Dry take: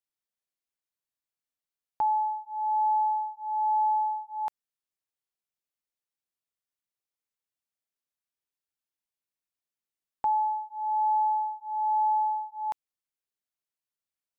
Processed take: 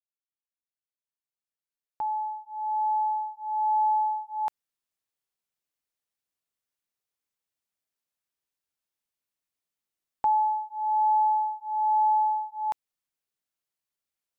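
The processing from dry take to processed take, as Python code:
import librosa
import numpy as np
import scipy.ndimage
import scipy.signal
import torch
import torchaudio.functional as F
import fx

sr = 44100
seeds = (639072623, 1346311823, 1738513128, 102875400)

y = fx.fade_in_head(x, sr, length_s=4.41)
y = y * 10.0 ** (2.5 / 20.0)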